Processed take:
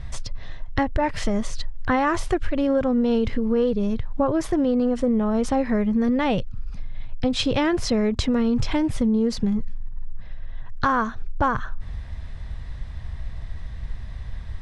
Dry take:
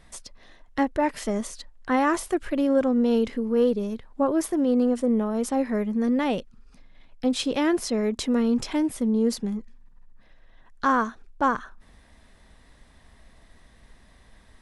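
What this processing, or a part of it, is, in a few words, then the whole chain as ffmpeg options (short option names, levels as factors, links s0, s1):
jukebox: -af "lowpass=5300,lowshelf=f=170:t=q:w=1.5:g=13.5,acompressor=threshold=0.0447:ratio=4,volume=2.66"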